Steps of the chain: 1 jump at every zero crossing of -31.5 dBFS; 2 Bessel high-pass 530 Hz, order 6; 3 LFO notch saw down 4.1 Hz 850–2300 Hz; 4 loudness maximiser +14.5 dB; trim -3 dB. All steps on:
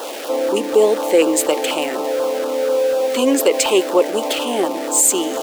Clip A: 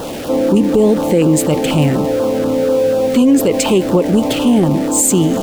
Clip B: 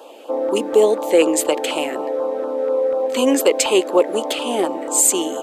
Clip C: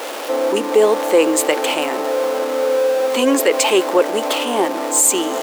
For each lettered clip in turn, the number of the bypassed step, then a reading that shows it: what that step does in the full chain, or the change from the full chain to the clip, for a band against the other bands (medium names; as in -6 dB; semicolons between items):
2, 250 Hz band +10.5 dB; 1, distortion -19 dB; 3, 2 kHz band +3.0 dB